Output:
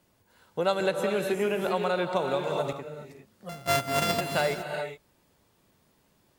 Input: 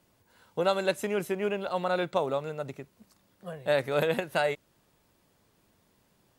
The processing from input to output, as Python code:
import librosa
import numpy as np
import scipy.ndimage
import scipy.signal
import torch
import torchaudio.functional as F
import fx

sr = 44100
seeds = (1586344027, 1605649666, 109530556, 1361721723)

y = fx.sample_sort(x, sr, block=64, at=(3.49, 4.21))
y = fx.rev_gated(y, sr, seeds[0], gate_ms=440, shape='rising', drr_db=5.0)
y = fx.band_squash(y, sr, depth_pct=100, at=(0.8, 2.73))